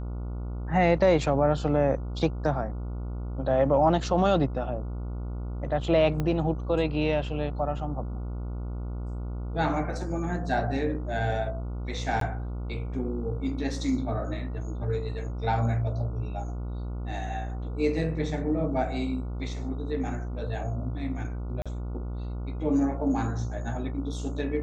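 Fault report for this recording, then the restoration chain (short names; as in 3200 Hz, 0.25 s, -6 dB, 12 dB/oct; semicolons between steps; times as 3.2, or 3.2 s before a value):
buzz 60 Hz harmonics 24 -33 dBFS
6.2 pop -17 dBFS
12.2–12.21 gap 13 ms
21.62–21.66 gap 36 ms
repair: de-click; de-hum 60 Hz, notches 24; interpolate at 12.2, 13 ms; interpolate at 21.62, 36 ms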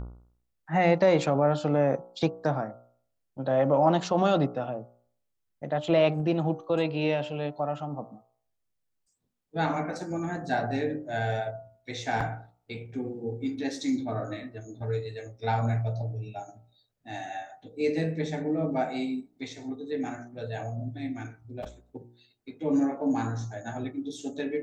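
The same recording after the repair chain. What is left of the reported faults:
6.2 pop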